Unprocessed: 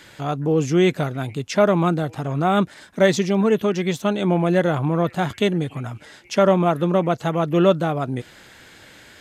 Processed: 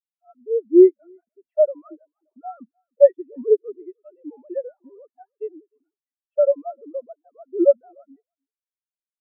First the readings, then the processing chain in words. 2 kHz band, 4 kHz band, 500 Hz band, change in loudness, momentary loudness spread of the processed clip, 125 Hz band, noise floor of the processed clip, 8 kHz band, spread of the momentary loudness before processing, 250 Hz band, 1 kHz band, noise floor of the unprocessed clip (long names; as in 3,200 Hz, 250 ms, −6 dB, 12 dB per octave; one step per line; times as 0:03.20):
below −30 dB, below −40 dB, +0.5 dB, +1.0 dB, 21 LU, below −40 dB, below −85 dBFS, below −40 dB, 10 LU, −4.5 dB, −18.0 dB, −47 dBFS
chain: three sine waves on the formant tracks
single-tap delay 304 ms −15 dB
every bin expanded away from the loudest bin 2.5 to 1
level +2 dB